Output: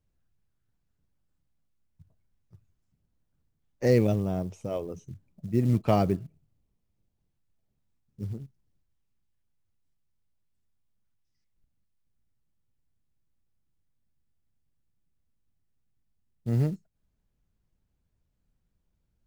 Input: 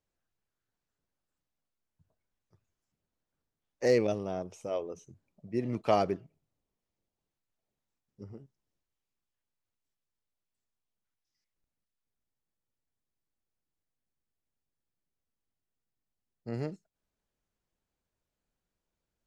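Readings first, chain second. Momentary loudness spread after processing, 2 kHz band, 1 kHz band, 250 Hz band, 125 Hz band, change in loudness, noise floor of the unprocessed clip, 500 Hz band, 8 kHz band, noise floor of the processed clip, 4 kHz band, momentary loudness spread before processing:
17 LU, 0.0 dB, 0.0 dB, +7.5 dB, +13.5 dB, +4.5 dB, below −85 dBFS, +1.5 dB, can't be measured, −77 dBFS, −0.5 dB, 21 LU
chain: bass and treble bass +15 dB, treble −2 dB
floating-point word with a short mantissa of 4 bits

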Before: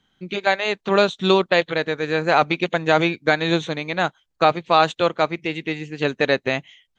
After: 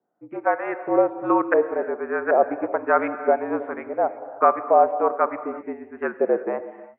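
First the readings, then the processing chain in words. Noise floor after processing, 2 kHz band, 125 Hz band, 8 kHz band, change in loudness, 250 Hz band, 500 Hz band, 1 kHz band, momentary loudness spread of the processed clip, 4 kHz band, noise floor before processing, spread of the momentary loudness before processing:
−48 dBFS, −8.0 dB, below −20 dB, can't be measured, −2.0 dB, −3.0 dB, −0.5 dB, −0.5 dB, 12 LU, below −40 dB, −73 dBFS, 8 LU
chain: auto-filter low-pass saw up 1.3 Hz 600–1,600 Hz
tape wow and flutter 26 cents
reverb whose tail is shaped and stops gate 380 ms flat, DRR 11 dB
single-sideband voice off tune −53 Hz 320–2,300 Hz
level −4.5 dB

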